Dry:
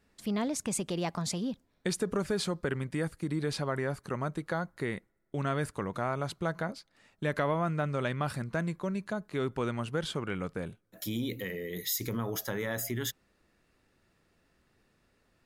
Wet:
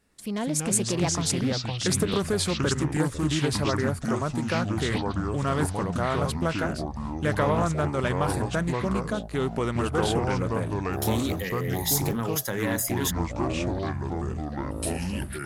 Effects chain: AGC gain up to 4.5 dB; echoes that change speed 0.117 s, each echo -5 st, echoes 3; bell 9700 Hz +9 dB 0.93 oct; Doppler distortion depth 0.25 ms

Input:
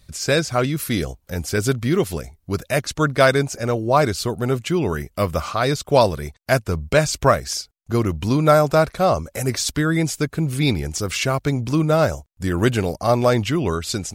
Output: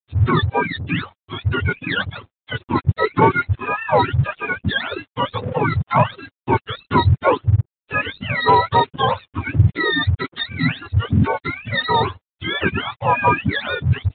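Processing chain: spectrum mirrored in octaves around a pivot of 770 Hz; reverb removal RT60 0.66 s; crossover distortion -44.5 dBFS; sample leveller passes 1; downsampling 8000 Hz

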